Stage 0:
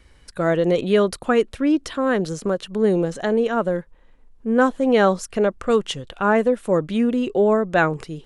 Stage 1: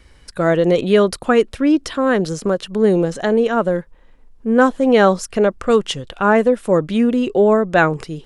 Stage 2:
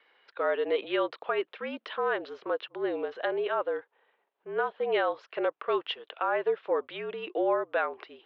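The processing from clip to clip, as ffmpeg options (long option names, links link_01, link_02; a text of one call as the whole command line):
ffmpeg -i in.wav -af "equalizer=frequency=5100:width=6.8:gain=3,volume=4dB" out.wav
ffmpeg -i in.wav -af "highpass=frequency=530:width_type=q:width=0.5412,highpass=frequency=530:width_type=q:width=1.307,lowpass=frequency=3600:width_type=q:width=0.5176,lowpass=frequency=3600:width_type=q:width=0.7071,lowpass=frequency=3600:width_type=q:width=1.932,afreqshift=-51,alimiter=limit=-10.5dB:level=0:latency=1:release=178,volume=-7.5dB" out.wav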